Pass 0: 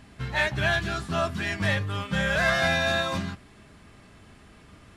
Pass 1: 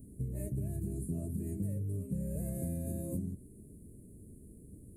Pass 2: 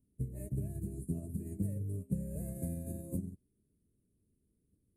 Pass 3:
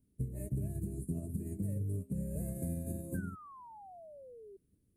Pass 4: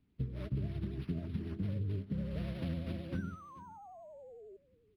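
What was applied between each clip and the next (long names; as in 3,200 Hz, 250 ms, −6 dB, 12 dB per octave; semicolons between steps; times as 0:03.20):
inverse Chebyshev band-stop filter 800–5,800 Hz, stop band 40 dB; high-shelf EQ 5,400 Hz +9.5 dB; downward compressor 5 to 1, threshold −33 dBFS, peak gain reduction 9 dB
expander for the loud parts 2.5 to 1, over −50 dBFS; level +3.5 dB
brickwall limiter −29.5 dBFS, peak gain reduction 8 dB; sound drawn into the spectrogram fall, 0:03.14–0:04.57, 380–1,600 Hz −54 dBFS; level +2 dB
pitch vibrato 11 Hz 78 cents; single-tap delay 435 ms −19 dB; linearly interpolated sample-rate reduction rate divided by 6×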